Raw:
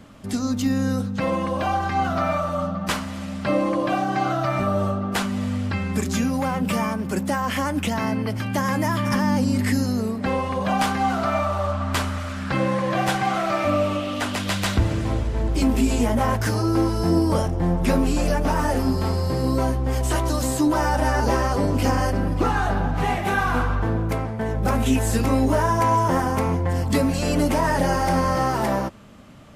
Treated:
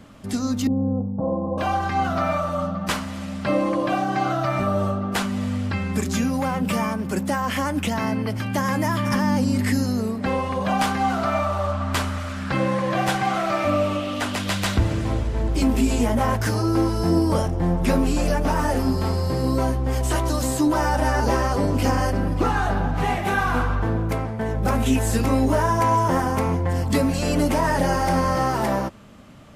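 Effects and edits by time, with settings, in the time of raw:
0.67–1.58 s: steep low-pass 940 Hz 48 dB/octave

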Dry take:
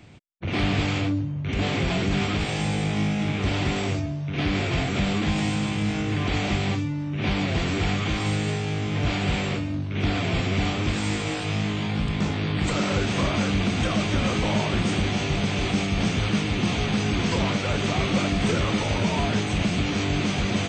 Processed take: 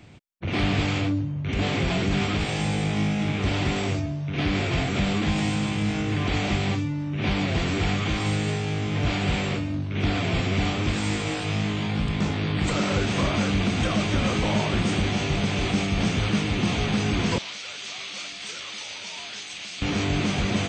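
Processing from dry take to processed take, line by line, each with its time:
17.38–19.82 s: band-pass filter 5.1 kHz, Q 1

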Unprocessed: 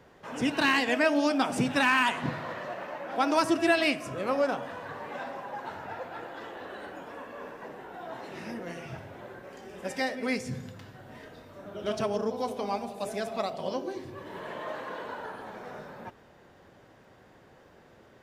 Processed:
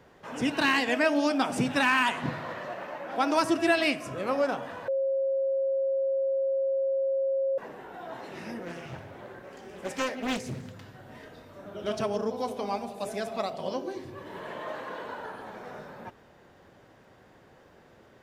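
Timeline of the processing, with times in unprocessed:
4.88–7.58 s: bleep 540 Hz -24 dBFS
8.65–10.73 s: loudspeaker Doppler distortion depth 0.8 ms

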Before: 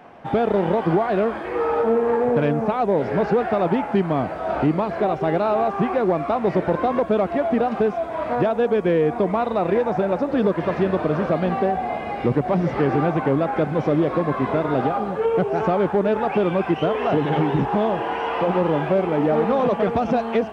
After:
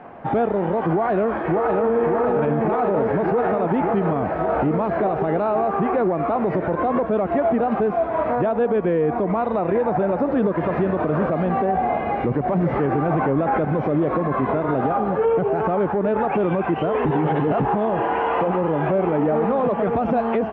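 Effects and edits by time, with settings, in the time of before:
0.90–1.91 s: echo throw 580 ms, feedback 75%, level -0.5 dB
13.08–13.65 s: gain +7.5 dB
17.05–17.60 s: reverse
whole clip: low-pass 1.9 kHz 12 dB/octave; peak limiter -17.5 dBFS; trim +5 dB

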